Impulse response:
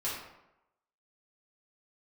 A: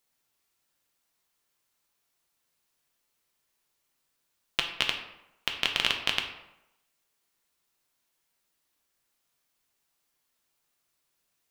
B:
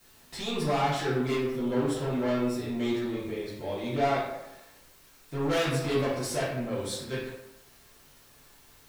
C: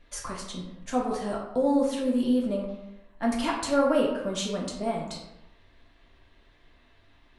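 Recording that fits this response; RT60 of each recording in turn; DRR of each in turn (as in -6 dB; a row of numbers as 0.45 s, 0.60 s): B; 0.90 s, 0.90 s, 0.90 s; 3.0 dB, -9.0 dB, -2.5 dB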